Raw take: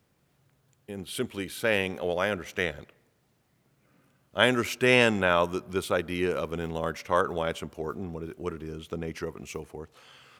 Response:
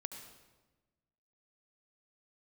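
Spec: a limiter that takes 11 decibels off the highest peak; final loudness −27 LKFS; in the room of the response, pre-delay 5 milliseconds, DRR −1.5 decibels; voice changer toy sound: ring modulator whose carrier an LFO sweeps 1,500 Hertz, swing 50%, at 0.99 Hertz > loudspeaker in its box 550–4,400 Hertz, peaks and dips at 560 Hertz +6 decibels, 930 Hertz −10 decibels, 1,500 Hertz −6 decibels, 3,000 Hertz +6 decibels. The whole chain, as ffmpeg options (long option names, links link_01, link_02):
-filter_complex "[0:a]alimiter=limit=-14.5dB:level=0:latency=1,asplit=2[link_01][link_02];[1:a]atrim=start_sample=2205,adelay=5[link_03];[link_02][link_03]afir=irnorm=-1:irlink=0,volume=4dB[link_04];[link_01][link_04]amix=inputs=2:normalize=0,aeval=exprs='val(0)*sin(2*PI*1500*n/s+1500*0.5/0.99*sin(2*PI*0.99*n/s))':channel_layout=same,highpass=550,equalizer=frequency=560:width_type=q:width=4:gain=6,equalizer=frequency=930:width_type=q:width=4:gain=-10,equalizer=frequency=1500:width_type=q:width=4:gain=-6,equalizer=frequency=3000:width_type=q:width=4:gain=6,lowpass=frequency=4400:width=0.5412,lowpass=frequency=4400:width=1.3066,volume=2dB"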